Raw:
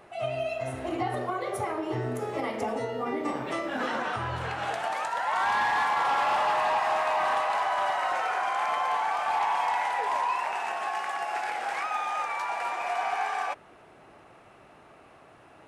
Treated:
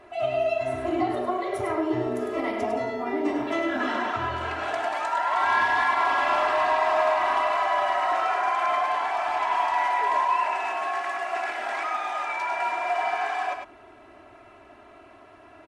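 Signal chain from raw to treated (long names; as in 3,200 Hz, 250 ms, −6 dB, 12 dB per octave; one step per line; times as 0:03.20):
high-shelf EQ 7,100 Hz −11 dB
comb filter 3 ms, depth 94%
on a send: single-tap delay 102 ms −6 dB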